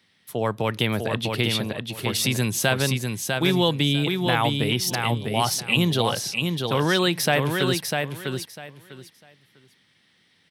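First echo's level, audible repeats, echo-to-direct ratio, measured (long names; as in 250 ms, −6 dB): −4.5 dB, 3, −4.5 dB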